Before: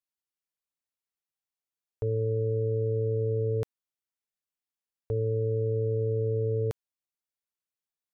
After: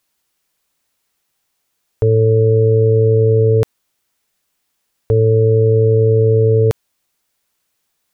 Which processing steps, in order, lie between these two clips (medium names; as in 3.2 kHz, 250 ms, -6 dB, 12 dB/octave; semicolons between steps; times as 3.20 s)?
loudness maximiser +29 dB; trim -5.5 dB